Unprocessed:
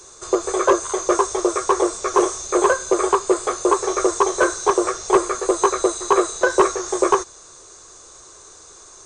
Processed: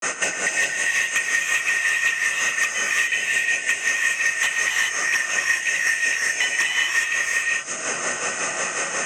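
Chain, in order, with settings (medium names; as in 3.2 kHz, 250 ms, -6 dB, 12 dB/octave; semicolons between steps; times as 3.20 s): four frequency bands reordered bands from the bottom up 4123; high-pass 240 Hz 12 dB/octave; tilt shelf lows +3.5 dB, about 780 Hz; compression 2:1, threshold -36 dBFS, peak gain reduction 13 dB; granulator 167 ms, grains 5.5 per s, spray 34 ms, pitch spread up and down by 0 st; sine folder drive 9 dB, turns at -17.5 dBFS; gated-style reverb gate 440 ms rising, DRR -3 dB; three bands compressed up and down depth 100%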